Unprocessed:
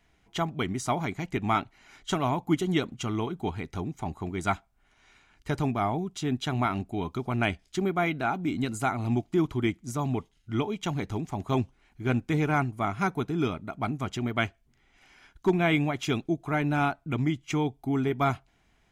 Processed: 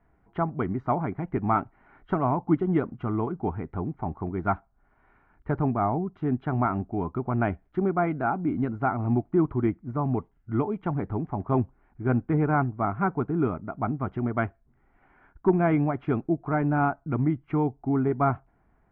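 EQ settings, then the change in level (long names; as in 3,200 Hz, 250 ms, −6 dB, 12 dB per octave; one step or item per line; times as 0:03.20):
low-pass filter 1,500 Hz 24 dB per octave
+2.5 dB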